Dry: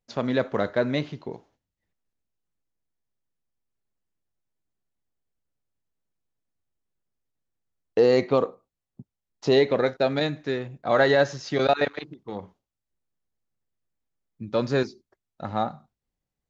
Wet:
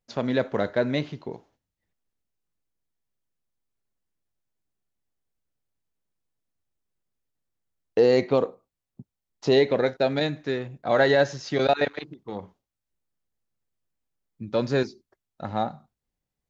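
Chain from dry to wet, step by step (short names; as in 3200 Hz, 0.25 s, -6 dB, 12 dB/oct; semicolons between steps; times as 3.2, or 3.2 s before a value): dynamic EQ 1200 Hz, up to -6 dB, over -45 dBFS, Q 5.6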